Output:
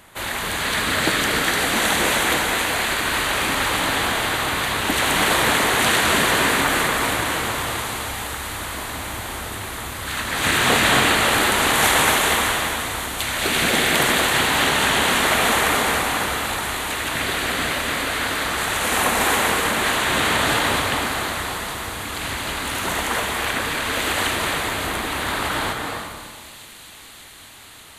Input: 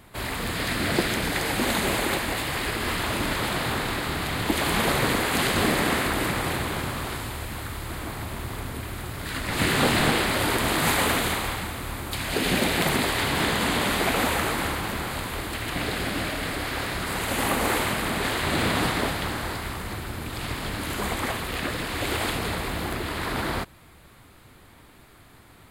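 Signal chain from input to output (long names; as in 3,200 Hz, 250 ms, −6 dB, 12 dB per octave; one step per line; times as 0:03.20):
low-shelf EQ 470 Hz −11 dB
convolution reverb RT60 1.6 s, pre-delay 193 ms, DRR 3 dB
wrong playback speed 48 kHz file played as 44.1 kHz
delay with a high-pass on its return 589 ms, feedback 82%, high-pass 3,500 Hz, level −14 dB
level +6.5 dB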